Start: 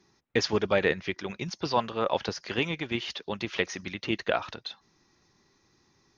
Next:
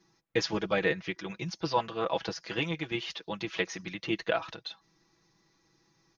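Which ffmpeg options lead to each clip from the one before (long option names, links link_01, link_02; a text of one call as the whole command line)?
ffmpeg -i in.wav -af "aecho=1:1:6.1:0.73,volume=-4.5dB" out.wav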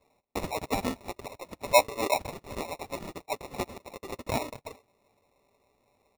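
ffmpeg -i in.wav -af "highpass=frequency=950:width_type=q:width=4.4,acrusher=samples=28:mix=1:aa=0.000001,volume=-2dB" out.wav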